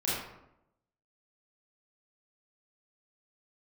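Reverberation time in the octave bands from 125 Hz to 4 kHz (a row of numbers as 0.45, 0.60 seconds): 0.90, 0.95, 0.85, 0.80, 0.65, 0.45 seconds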